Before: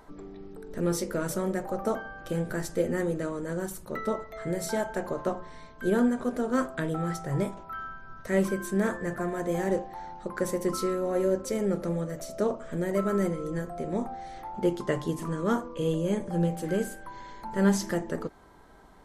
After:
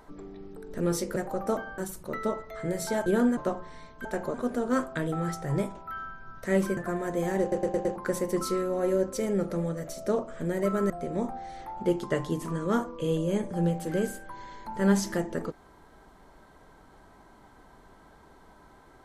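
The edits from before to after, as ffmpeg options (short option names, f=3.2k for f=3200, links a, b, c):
-filter_complex "[0:a]asplit=14[a][b][c][d][e][f][g][h][i][j][k][l][m][n];[a]atrim=end=1.162[o];[b]atrim=start=1.538:end=2.162[p];[c]atrim=start=3.598:end=4.882[q];[d]atrim=start=5.848:end=6.162[r];[e]atrim=start=5.168:end=5.852[s];[f]atrim=start=4.878:end=5.172[t];[g]atrim=start=6.158:end=8.592[u];[h]atrim=start=9.088:end=9.842[v];[i]atrim=start=9.728:end=9.842[w];[j]atrim=start=9.728:end=9.842[x];[k]atrim=start=9.728:end=9.842[y];[l]atrim=start=9.728:end=9.842[z];[m]atrim=start=10.278:end=13.222[aa];[n]atrim=start=13.668[ab];[o][p]acrossfade=d=0.004:c1=hsin:c2=hsin[ac];[ac][q]acrossfade=d=0.004:c1=hsin:c2=hsin[ad];[ad][r]acrossfade=d=0.004:c1=hsin:c2=hsin[ae];[ae][s]acrossfade=d=0.004:c1=hsin:c2=hsin[af];[af][t]acrossfade=d=0.004:c1=hsin:c2=hsin[ag];[ag][u]acrossfade=d=0.004:c1=hsin:c2=hsin[ah];[ah][v]acrossfade=d=0.004:c1=hsin:c2=hsin[ai];[ai][w]acrossfade=d=0.004:c1=hsin:c2=hsin[aj];[aj][x]acrossfade=d=0.004:c1=hsin:c2=hsin[ak];[ak][y]acrossfade=d=0.004:c1=hsin:c2=hsin[al];[al][z]acrossfade=d=0.004:c1=hsin:c2=hsin[am];[am][aa]acrossfade=d=0.004:c1=hsin:c2=hsin[an];[an][ab]acrossfade=d=0.004:c1=hsin:c2=hsin"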